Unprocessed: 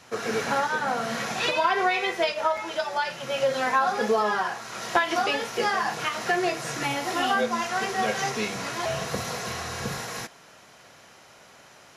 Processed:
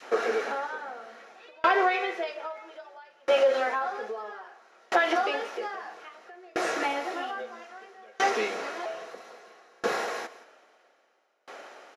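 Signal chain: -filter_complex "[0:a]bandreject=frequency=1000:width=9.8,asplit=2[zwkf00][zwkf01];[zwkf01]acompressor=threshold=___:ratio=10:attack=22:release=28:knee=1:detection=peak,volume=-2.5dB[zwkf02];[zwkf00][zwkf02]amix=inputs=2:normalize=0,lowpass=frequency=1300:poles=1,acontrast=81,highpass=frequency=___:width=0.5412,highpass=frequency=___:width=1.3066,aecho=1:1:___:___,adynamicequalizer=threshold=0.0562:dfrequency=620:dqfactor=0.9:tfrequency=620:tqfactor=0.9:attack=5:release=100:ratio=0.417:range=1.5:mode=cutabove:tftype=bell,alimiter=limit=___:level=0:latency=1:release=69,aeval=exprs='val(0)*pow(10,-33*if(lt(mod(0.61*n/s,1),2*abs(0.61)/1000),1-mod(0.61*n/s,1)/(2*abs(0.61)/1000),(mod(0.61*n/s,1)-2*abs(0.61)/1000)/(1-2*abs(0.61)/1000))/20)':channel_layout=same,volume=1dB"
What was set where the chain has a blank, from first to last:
-39dB, 340, 340, 172, 0.211, -11.5dB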